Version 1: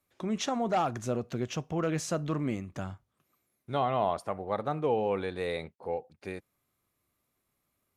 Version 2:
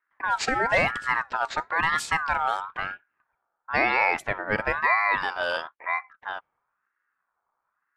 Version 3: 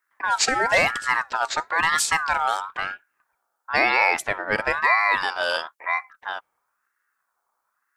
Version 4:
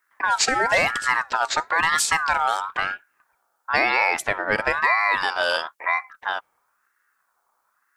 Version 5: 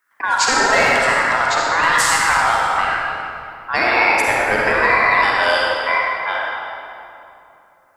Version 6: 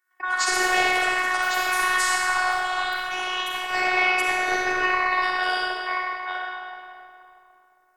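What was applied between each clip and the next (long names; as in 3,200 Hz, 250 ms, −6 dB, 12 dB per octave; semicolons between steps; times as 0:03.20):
low-pass that shuts in the quiet parts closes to 470 Hz, open at −26.5 dBFS; ring modulator whose carrier an LFO sweeps 1,300 Hz, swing 20%, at 1 Hz; level +8.5 dB
bass and treble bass −6 dB, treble +11 dB; level +2.5 dB
downward compressor 2 to 1, threshold −26 dBFS, peak gain reduction 7 dB; level +5.5 dB
convolution reverb RT60 2.9 s, pre-delay 41 ms, DRR −4 dB; level +1 dB
delay with pitch and tempo change per echo 143 ms, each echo +4 semitones, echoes 3, each echo −6 dB; phases set to zero 367 Hz; level −5.5 dB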